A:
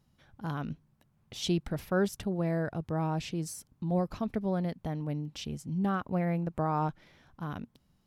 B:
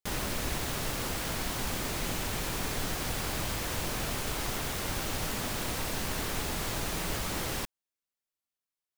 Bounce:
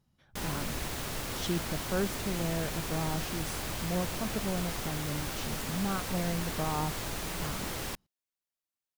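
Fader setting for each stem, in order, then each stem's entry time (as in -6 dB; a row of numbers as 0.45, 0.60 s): -3.5, -3.0 dB; 0.00, 0.30 s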